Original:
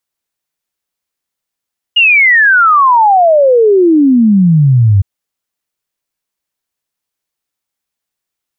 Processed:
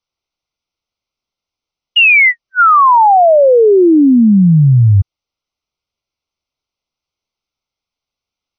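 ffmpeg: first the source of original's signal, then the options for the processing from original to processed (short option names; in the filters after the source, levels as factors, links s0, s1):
-f lavfi -i "aevalsrc='0.631*clip(min(t,3.06-t)/0.01,0,1)*sin(2*PI*2900*3.06/log(94/2900)*(exp(log(94/2900)*t/3.06)-1))':d=3.06:s=44100"
-af "asuperstop=centerf=1700:order=20:qfactor=3.1" -ar 44100 -c:a ac3 -b:a 32k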